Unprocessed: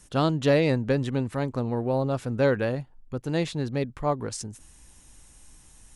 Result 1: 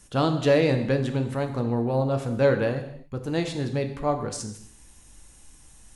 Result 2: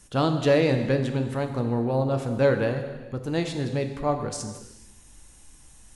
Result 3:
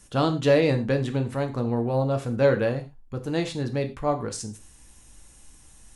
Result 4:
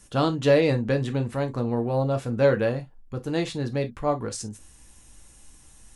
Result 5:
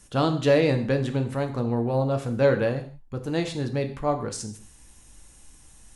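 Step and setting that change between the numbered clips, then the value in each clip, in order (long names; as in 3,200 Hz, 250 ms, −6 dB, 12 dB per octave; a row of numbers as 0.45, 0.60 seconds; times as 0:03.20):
reverb whose tail is shaped and stops, gate: 310, 510, 140, 80, 200 milliseconds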